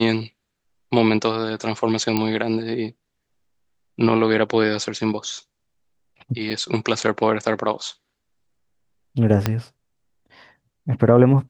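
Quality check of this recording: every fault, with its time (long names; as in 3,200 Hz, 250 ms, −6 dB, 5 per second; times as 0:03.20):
0:02.17: click −7 dBFS
0:06.50–0:06.51: drop-out 5.9 ms
0:09.46: click −5 dBFS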